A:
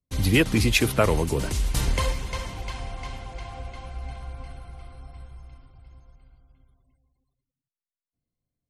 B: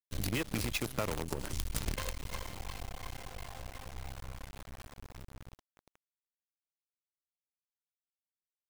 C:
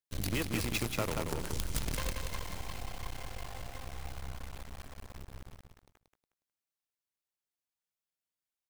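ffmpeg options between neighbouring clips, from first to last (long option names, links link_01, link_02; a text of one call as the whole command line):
ffmpeg -i in.wav -af "acrusher=bits=4:dc=4:mix=0:aa=0.000001,acompressor=threshold=-25dB:ratio=6,agate=range=-6dB:threshold=-43dB:ratio=16:detection=peak,volume=-5.5dB" out.wav
ffmpeg -i in.wav -af "aecho=1:1:181|362|543:0.562|0.141|0.0351" out.wav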